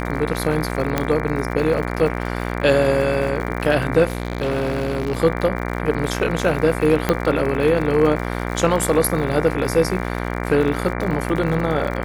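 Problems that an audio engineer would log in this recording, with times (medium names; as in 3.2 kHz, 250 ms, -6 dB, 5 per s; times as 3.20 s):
buzz 60 Hz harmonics 39 -25 dBFS
crackle 85 per s -27 dBFS
0.98 s: pop -5 dBFS
4.07–5.20 s: clipped -17.5 dBFS
7.09 s: pop -4 dBFS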